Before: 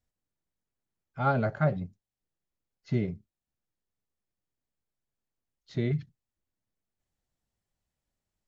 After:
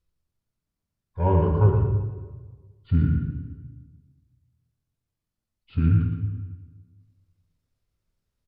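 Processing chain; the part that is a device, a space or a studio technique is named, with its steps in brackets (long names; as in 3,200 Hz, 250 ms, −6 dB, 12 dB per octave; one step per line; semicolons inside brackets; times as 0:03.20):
monster voice (pitch shifter −6.5 semitones; low-shelf EQ 180 Hz +9 dB; single-tap delay 116 ms −7 dB; convolution reverb RT60 1.4 s, pre-delay 11 ms, DRR 2.5 dB)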